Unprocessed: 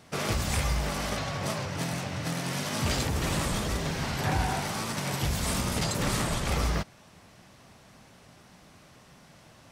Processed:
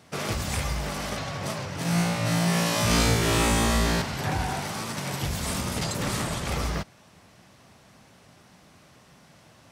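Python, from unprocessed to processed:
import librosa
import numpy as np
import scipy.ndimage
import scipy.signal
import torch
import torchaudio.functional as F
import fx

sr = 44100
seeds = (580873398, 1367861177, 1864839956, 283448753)

y = scipy.signal.sosfilt(scipy.signal.butter(2, 52.0, 'highpass', fs=sr, output='sos'), x)
y = fx.room_flutter(y, sr, wall_m=3.0, rt60_s=1.1, at=(1.83, 4.02))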